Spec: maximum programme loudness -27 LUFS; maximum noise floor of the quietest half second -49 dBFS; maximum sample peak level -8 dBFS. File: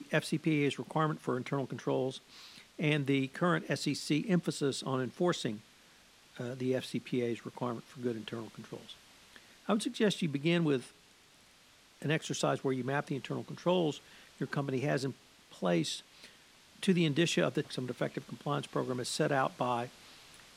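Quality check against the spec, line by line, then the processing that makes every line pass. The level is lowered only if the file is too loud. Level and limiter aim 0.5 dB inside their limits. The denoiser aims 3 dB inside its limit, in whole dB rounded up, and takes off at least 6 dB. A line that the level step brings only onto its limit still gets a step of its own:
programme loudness -33.5 LUFS: OK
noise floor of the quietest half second -62 dBFS: OK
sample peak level -15.0 dBFS: OK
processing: none

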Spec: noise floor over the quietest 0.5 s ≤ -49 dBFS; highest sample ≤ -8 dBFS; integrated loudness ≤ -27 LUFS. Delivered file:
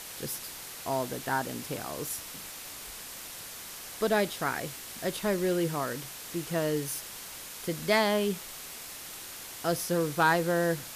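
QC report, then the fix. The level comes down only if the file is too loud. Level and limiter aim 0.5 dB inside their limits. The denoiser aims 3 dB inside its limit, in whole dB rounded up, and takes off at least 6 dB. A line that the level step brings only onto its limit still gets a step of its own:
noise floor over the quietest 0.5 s -43 dBFS: fail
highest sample -14.5 dBFS: OK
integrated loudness -31.5 LUFS: OK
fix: denoiser 9 dB, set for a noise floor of -43 dBFS

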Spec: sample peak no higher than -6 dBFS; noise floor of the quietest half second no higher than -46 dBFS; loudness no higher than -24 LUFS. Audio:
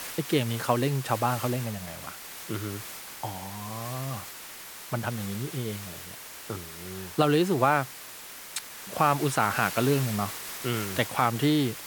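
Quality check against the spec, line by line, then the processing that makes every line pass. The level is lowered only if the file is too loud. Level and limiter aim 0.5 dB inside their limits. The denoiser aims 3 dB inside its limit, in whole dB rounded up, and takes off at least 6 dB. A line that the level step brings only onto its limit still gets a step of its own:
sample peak -9.0 dBFS: OK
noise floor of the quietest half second -43 dBFS: fail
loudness -28.5 LUFS: OK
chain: denoiser 6 dB, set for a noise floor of -43 dBFS

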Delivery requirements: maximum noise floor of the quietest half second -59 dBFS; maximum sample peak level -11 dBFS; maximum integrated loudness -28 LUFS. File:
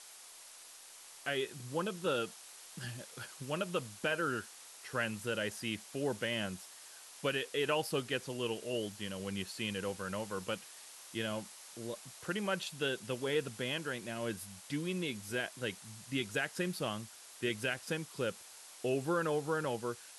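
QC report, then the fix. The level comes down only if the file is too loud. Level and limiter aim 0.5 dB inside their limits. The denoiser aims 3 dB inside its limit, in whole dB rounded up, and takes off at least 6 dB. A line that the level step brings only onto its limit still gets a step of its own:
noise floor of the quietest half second -54 dBFS: fail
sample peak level -20.5 dBFS: OK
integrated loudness -37.5 LUFS: OK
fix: denoiser 8 dB, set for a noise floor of -54 dBFS

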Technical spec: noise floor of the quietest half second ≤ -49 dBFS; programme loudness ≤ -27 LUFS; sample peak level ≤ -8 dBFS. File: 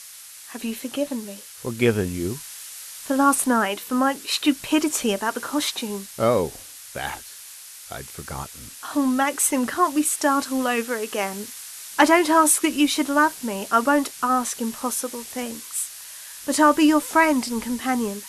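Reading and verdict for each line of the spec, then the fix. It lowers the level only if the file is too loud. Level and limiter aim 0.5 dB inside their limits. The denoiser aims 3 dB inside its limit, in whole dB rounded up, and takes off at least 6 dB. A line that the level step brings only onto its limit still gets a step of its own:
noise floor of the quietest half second -42 dBFS: fail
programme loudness -22.0 LUFS: fail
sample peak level -2.5 dBFS: fail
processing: denoiser 6 dB, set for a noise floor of -42 dBFS; gain -5.5 dB; limiter -8.5 dBFS

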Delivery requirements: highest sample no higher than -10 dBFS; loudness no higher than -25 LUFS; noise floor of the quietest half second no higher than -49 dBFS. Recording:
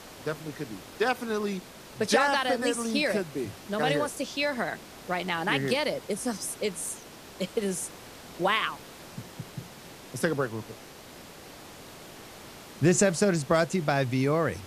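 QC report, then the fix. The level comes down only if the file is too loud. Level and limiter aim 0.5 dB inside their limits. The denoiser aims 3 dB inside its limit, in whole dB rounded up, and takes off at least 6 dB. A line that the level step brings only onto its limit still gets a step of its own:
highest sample -9.0 dBFS: fail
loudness -28.0 LUFS: OK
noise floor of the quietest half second -47 dBFS: fail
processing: denoiser 6 dB, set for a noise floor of -47 dBFS; limiter -10.5 dBFS

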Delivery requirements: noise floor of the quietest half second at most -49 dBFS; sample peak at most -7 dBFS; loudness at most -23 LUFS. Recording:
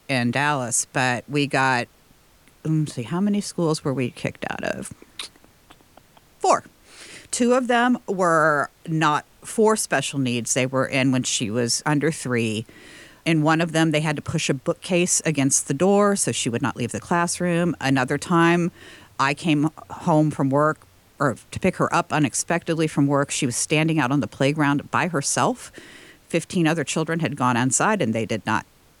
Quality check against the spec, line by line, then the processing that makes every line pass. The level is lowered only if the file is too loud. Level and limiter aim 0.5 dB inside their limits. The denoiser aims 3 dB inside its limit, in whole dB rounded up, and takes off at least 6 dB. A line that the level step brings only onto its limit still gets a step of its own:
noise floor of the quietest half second -55 dBFS: OK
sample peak -5.0 dBFS: fail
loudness -22.0 LUFS: fail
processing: gain -1.5 dB; limiter -7.5 dBFS

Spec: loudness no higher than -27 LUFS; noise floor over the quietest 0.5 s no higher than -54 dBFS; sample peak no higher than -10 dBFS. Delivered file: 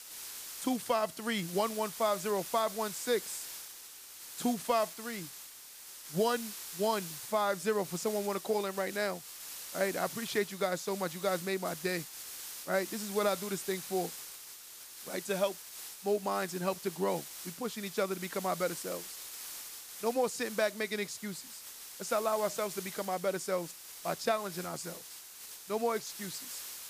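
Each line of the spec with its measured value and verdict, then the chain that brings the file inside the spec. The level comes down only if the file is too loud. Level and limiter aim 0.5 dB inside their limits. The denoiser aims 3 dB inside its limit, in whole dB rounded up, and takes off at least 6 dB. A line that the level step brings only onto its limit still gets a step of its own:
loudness -34.5 LUFS: OK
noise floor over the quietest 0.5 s -50 dBFS: fail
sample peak -17.0 dBFS: OK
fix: denoiser 7 dB, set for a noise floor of -50 dBFS

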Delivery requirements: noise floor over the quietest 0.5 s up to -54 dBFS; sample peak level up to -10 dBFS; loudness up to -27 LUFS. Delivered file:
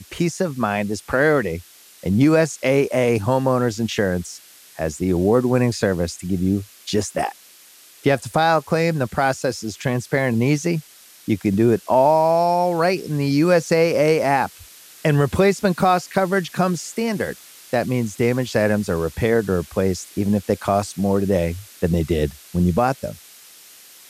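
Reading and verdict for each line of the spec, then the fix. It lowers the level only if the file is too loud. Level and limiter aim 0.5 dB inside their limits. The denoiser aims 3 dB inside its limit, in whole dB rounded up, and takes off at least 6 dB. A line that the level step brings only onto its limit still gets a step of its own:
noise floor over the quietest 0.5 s -48 dBFS: fail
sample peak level -5.5 dBFS: fail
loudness -20.0 LUFS: fail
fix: gain -7.5 dB

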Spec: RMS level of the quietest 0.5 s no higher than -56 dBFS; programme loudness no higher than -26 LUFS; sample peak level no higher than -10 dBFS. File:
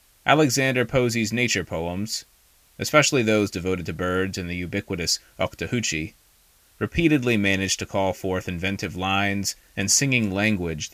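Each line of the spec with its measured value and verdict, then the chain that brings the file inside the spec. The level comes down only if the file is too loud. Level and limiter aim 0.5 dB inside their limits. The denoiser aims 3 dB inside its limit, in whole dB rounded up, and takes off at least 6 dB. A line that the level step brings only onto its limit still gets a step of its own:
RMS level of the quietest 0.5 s -58 dBFS: OK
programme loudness -23.0 LUFS: fail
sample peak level -4.0 dBFS: fail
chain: gain -3.5 dB; limiter -10.5 dBFS

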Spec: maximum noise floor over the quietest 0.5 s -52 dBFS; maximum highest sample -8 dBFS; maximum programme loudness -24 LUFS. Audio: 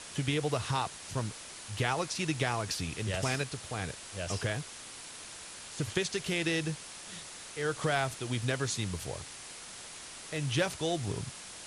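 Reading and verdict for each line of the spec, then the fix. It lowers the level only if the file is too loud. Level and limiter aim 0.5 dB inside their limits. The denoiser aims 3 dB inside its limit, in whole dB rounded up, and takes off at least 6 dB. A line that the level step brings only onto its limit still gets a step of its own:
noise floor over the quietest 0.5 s -46 dBFS: fail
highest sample -16.0 dBFS: OK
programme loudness -34.5 LUFS: OK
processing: denoiser 9 dB, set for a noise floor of -46 dBFS

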